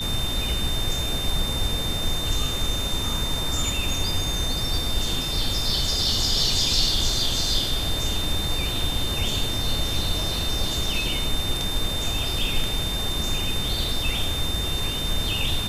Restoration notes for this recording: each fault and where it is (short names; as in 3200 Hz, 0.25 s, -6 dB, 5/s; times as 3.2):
tone 3600 Hz -28 dBFS